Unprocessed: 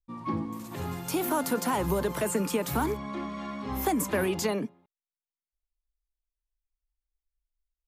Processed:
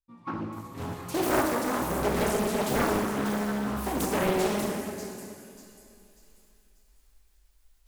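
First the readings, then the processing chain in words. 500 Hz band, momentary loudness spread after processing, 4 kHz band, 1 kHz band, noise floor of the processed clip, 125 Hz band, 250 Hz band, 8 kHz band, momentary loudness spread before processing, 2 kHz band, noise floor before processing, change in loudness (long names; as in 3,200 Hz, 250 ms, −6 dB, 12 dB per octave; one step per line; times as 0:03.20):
+2.0 dB, 12 LU, +2.5 dB, +2.0 dB, −63 dBFS, +0.5 dB, +1.5 dB, 0.0 dB, 9 LU, +3.5 dB, below −85 dBFS, +1.5 dB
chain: noise gate −36 dBFS, range −11 dB
reversed playback
upward compression, threshold −34 dBFS
reversed playback
sample-and-hold tremolo
on a send: delay with a high-pass on its return 591 ms, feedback 36%, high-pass 5,100 Hz, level −6 dB
on the sum: dense smooth reverb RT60 2.7 s, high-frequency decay 0.75×, DRR −3 dB
highs frequency-modulated by the lows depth 0.94 ms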